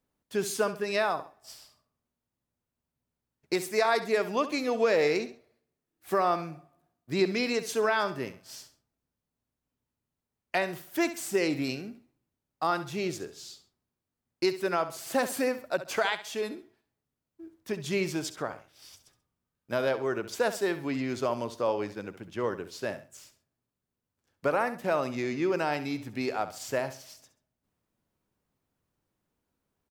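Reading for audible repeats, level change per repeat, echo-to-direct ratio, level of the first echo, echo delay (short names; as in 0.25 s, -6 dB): 2, -10.0 dB, -12.5 dB, -13.0 dB, 67 ms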